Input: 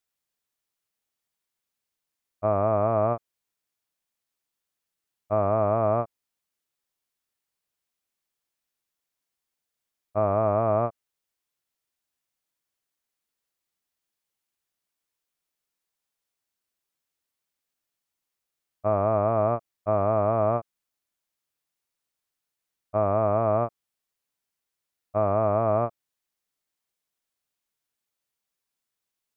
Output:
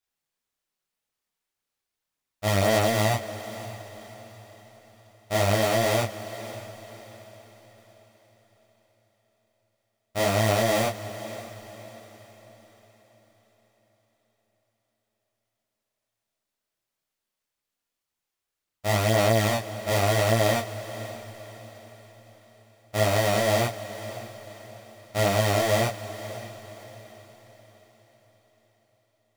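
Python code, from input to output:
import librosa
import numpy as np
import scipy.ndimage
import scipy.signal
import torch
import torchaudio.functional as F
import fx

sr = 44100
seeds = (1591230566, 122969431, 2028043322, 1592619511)

y = fx.halfwave_hold(x, sr)
y = fx.chorus_voices(y, sr, voices=2, hz=0.91, base_ms=29, depth_ms=3.1, mix_pct=55)
y = fx.echo_diffused(y, sr, ms=563, feedback_pct=44, wet_db=-14.0)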